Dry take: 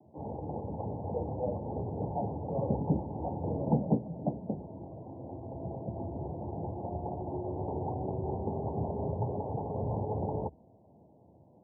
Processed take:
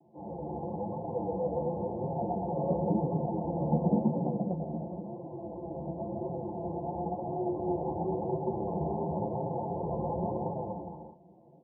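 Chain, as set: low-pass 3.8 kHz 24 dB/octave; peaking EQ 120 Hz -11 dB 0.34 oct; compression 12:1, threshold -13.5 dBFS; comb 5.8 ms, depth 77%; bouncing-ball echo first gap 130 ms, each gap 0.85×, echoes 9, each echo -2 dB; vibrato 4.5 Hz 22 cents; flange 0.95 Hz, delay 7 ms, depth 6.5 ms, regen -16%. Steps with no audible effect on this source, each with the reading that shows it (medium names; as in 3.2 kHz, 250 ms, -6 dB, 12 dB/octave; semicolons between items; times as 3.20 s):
low-pass 3.8 kHz: input has nothing above 1 kHz; compression, threshold -13.5 dBFS: peak at its input -16.0 dBFS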